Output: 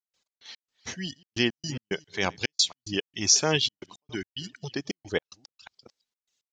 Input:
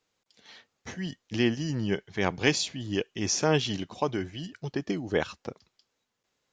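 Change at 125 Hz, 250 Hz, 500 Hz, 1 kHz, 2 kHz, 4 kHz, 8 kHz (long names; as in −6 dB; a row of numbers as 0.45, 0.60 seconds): −4.5, −4.0, −3.0, −2.5, +0.5, +6.0, +7.5 decibels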